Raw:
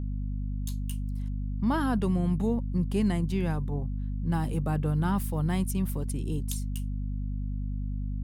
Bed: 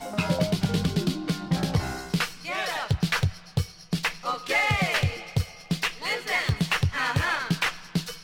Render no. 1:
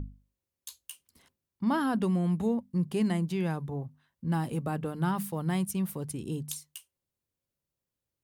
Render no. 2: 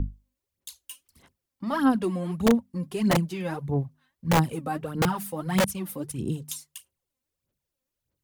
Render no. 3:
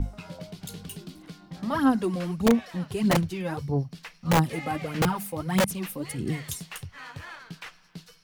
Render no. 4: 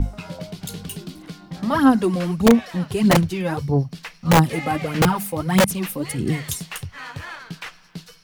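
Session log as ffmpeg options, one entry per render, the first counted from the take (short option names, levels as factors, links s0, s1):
-af "bandreject=f=50:t=h:w=6,bandreject=f=100:t=h:w=6,bandreject=f=150:t=h:w=6,bandreject=f=200:t=h:w=6,bandreject=f=250:t=h:w=6"
-filter_complex "[0:a]aphaser=in_gain=1:out_gain=1:delay=3.9:decay=0.69:speed=1.6:type=sinusoidal,acrossover=split=260|7500[s0][s1][s2];[s0]aeval=exprs='(mod(7.5*val(0)+1,2)-1)/7.5':c=same[s3];[s3][s1][s2]amix=inputs=3:normalize=0"
-filter_complex "[1:a]volume=0.158[s0];[0:a][s0]amix=inputs=2:normalize=0"
-af "volume=2.24"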